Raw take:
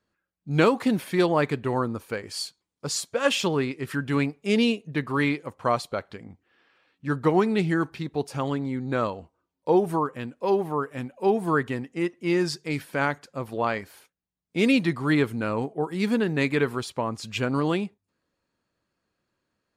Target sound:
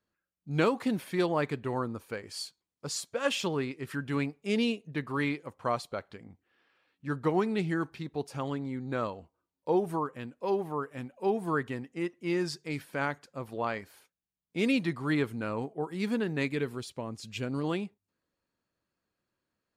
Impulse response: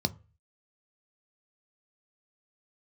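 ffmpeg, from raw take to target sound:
-filter_complex "[0:a]asettb=1/sr,asplit=3[s0][s1][s2];[s0]atrim=end=16.484[s3];[s1]atrim=start=16.48:end=17.64,asetpts=PTS-STARTPTS,afade=t=in:d=0.004:c=qsin,afade=t=out:st=1.156:d=0.004:c=qsin,equalizer=f=1100:t=o:w=1.6:g=-8[s4];[s2]atrim=start=17.636[s5];[s3][s4]acrossfade=d=0.004:c1=hsin:c2=qsin[s6];[s6][s5]acrossfade=d=0.004:c1=qsin:c2=hsin,volume=0.473"

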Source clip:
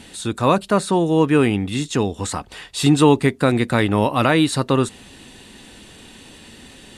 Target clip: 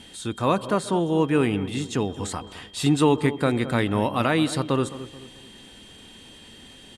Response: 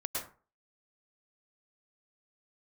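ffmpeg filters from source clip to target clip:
-filter_complex "[0:a]aeval=exprs='val(0)+0.00794*sin(2*PI*3200*n/s)':c=same,asplit=2[s0][s1];[s1]adelay=216,lowpass=f=1200:p=1,volume=0.224,asplit=2[s2][s3];[s3]adelay=216,lowpass=f=1200:p=1,volume=0.42,asplit=2[s4][s5];[s5]adelay=216,lowpass=f=1200:p=1,volume=0.42,asplit=2[s6][s7];[s7]adelay=216,lowpass=f=1200:p=1,volume=0.42[s8];[s0][s2][s4][s6][s8]amix=inputs=5:normalize=0,asplit=2[s9][s10];[1:a]atrim=start_sample=2205,asetrate=37485,aresample=44100,lowpass=3100[s11];[s10][s11]afir=irnorm=-1:irlink=0,volume=0.075[s12];[s9][s12]amix=inputs=2:normalize=0,volume=0.501"

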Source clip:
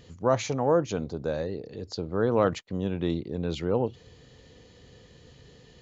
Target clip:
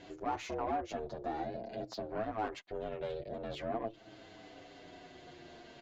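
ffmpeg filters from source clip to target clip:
-filter_complex "[0:a]acompressor=threshold=0.0112:ratio=2,aeval=exprs='val(0)*sin(2*PI*220*n/s)':c=same,asplit=2[s0][s1];[s1]highpass=f=720:p=1,volume=7.94,asoftclip=type=tanh:threshold=0.0794[s2];[s0][s2]amix=inputs=2:normalize=0,lowpass=f=1700:p=1,volume=0.501,asplit=2[s3][s4];[s4]adelay=7.5,afreqshift=-0.44[s5];[s3][s5]amix=inputs=2:normalize=1"

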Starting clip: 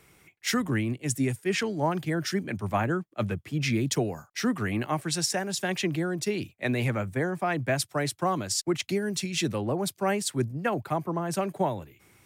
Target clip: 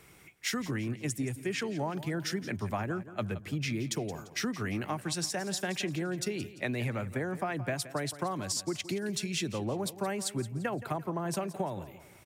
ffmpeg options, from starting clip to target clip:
-filter_complex "[0:a]acompressor=threshold=0.0251:ratio=6,asplit=2[s0][s1];[s1]aecho=0:1:172|344|516|688:0.178|0.0711|0.0285|0.0114[s2];[s0][s2]amix=inputs=2:normalize=0,volume=1.19"

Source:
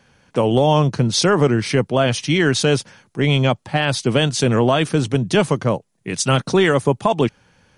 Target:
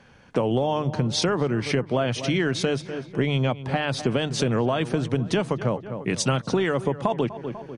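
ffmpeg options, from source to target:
-filter_complex "[0:a]aemphasis=mode=reproduction:type=50kf,asplit=2[s0][s1];[s1]adelay=247,lowpass=f=2300:p=1,volume=0.141,asplit=2[s2][s3];[s3]adelay=247,lowpass=f=2300:p=1,volume=0.46,asplit=2[s4][s5];[s5]adelay=247,lowpass=f=2300:p=1,volume=0.46,asplit=2[s6][s7];[s7]adelay=247,lowpass=f=2300:p=1,volume=0.46[s8];[s0][s2][s4][s6][s8]amix=inputs=5:normalize=0,acompressor=threshold=0.0708:ratio=6,bandreject=f=50:t=h:w=6,bandreject=f=100:t=h:w=6,bandreject=f=150:t=h:w=6,volume=1.41"

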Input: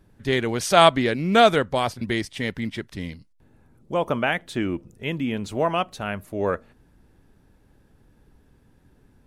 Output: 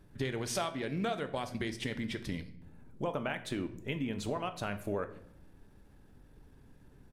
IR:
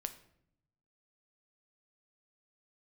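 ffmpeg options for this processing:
-filter_complex "[0:a]acompressor=threshold=0.0316:ratio=8,atempo=1.3[s0];[1:a]atrim=start_sample=2205[s1];[s0][s1]afir=irnorm=-1:irlink=0"

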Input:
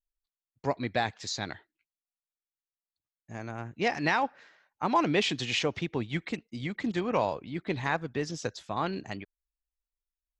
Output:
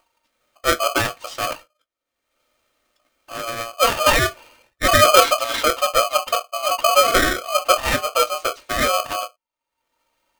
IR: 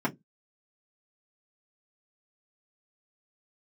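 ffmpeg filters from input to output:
-filter_complex "[0:a]acompressor=mode=upward:threshold=0.00355:ratio=2.5[s0];[1:a]atrim=start_sample=2205,asetrate=61740,aresample=44100[s1];[s0][s1]afir=irnorm=-1:irlink=0,aeval=exprs='val(0)*sgn(sin(2*PI*920*n/s))':c=same,volume=1.12"

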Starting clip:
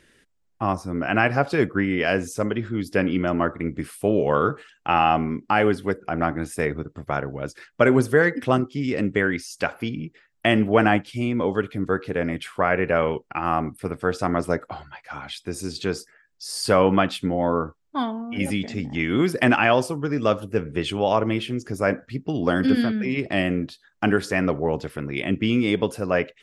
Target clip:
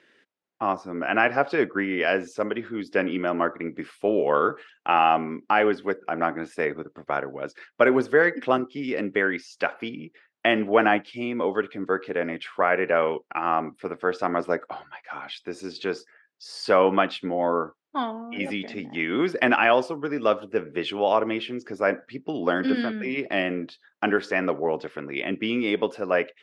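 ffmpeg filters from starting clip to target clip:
-af "highpass=310,lowpass=3800"

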